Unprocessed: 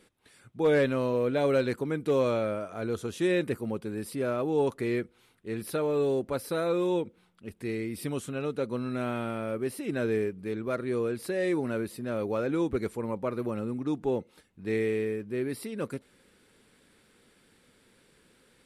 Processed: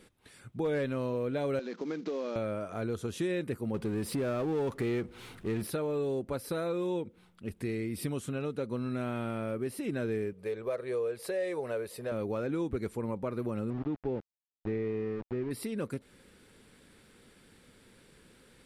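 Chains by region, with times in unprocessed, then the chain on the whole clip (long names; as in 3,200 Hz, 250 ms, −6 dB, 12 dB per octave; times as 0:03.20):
0:01.59–0:02.36: variable-slope delta modulation 32 kbit/s + elliptic high-pass filter 180 Hz + downward compressor 3 to 1, threshold −31 dBFS
0:03.74–0:05.67: high-shelf EQ 7,800 Hz −7 dB + power curve on the samples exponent 0.7
0:10.33–0:12.12: low shelf with overshoot 370 Hz −8.5 dB, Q 3 + notch filter 1,400 Hz, Q 18
0:13.70–0:15.51: centre clipping without the shift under −35.5 dBFS + head-to-tape spacing loss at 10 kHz 39 dB
whole clip: downward compressor 2.5 to 1, threshold −37 dBFS; low-shelf EQ 180 Hz +6 dB; level +2 dB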